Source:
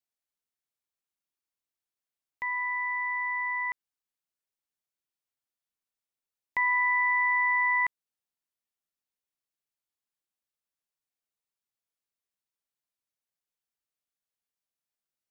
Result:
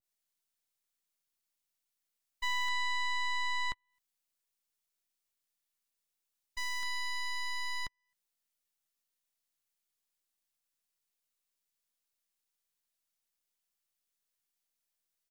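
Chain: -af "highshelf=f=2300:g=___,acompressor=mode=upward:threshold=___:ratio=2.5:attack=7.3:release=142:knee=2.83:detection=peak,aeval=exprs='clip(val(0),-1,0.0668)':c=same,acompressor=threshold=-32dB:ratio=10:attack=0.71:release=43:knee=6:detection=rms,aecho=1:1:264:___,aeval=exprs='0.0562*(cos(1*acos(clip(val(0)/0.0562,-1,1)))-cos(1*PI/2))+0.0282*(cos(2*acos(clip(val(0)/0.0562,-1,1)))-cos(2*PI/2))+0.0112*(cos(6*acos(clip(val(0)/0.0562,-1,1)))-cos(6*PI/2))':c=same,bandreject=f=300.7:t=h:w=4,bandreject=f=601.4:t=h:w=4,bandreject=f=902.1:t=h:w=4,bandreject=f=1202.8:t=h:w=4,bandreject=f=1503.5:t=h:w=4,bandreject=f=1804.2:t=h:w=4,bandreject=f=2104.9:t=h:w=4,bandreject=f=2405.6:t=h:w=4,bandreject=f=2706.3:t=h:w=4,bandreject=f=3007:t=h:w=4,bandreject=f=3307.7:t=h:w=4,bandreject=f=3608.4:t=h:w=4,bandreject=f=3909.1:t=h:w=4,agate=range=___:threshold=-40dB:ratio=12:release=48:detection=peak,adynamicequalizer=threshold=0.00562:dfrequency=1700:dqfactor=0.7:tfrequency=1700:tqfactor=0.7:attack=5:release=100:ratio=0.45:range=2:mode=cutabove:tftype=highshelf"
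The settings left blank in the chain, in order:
9, -28dB, 0.299, -34dB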